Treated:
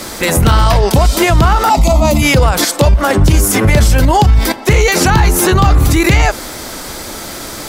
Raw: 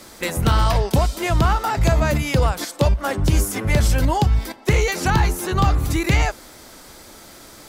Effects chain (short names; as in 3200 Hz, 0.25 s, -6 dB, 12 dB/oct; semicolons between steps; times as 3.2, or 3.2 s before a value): 1.69–2.22 fixed phaser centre 440 Hz, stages 6; maximiser +18 dB; gain -1 dB